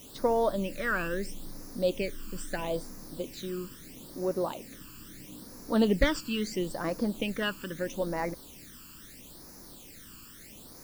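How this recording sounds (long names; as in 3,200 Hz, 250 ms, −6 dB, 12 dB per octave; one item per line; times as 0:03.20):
a quantiser's noise floor 8 bits, dither triangular
phaser sweep stages 12, 0.76 Hz, lowest notch 640–3,100 Hz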